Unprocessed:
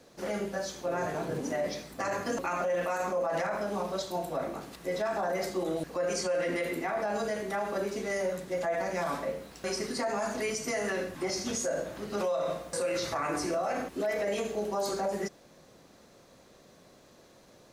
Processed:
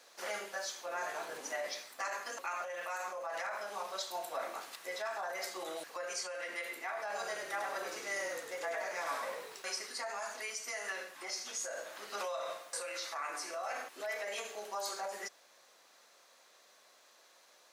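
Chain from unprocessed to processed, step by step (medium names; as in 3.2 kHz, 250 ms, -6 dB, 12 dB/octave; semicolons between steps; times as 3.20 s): high-pass 960 Hz 12 dB/octave; gain riding within 5 dB 0.5 s; 7.00–9.62 s: frequency-shifting echo 101 ms, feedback 41%, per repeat -48 Hz, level -5 dB; trim -2 dB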